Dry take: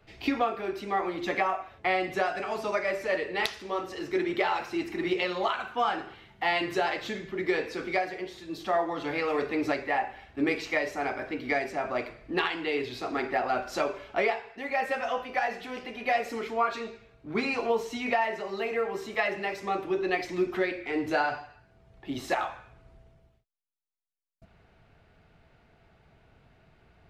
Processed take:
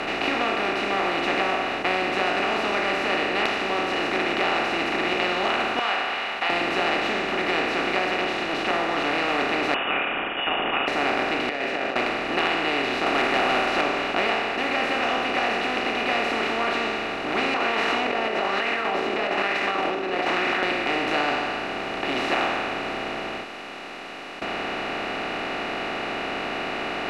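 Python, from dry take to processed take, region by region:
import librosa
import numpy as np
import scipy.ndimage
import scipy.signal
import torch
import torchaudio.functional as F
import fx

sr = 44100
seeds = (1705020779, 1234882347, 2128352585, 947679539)

y = fx.chain(x, sr, fx.cheby2_highpass(hz=350.0, order=4, stop_db=50),
    fx.high_shelf_res(hz=4500.0, db=-12.0, q=1.5), at=(5.79, 6.5))
y = fx.chain(y, sr, fx.peak_eq(hz=11000.0, db=-8.5, octaves=0.64),
    fx.doppler_dist(depth_ms=0.38), at=(8.11, 8.71))
y = fx.chain(y, sr, fx.envelope_sharpen(power=1.5),
    fx.highpass(hz=47.0, slope=12),
    fx.freq_invert(carrier_hz=3200), at=(9.74, 10.88))
y = fx.chain(y, sr, fx.vowel_filter(vowel='e'),
    fx.over_compress(threshold_db=-45.0, ratio=-1.0), at=(11.49, 11.96))
y = fx.chain(y, sr, fx.lowpass(hz=3400.0, slope=12),
    fx.peak_eq(hz=180.0, db=-11.0, octaves=2.7),
    fx.leveller(passes=3), at=(13.06, 13.81))
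y = fx.chain(y, sr, fx.wah_lfo(hz=1.1, low_hz=370.0, high_hz=2000.0, q=10.0),
    fx.env_flatten(amount_pct=100), at=(17.54, 20.63))
y = fx.bin_compress(y, sr, power=0.2)
y = scipy.signal.sosfilt(scipy.signal.butter(4, 10000.0, 'lowpass', fs=sr, output='sos'), y)
y = F.gain(torch.from_numpy(y), -7.0).numpy()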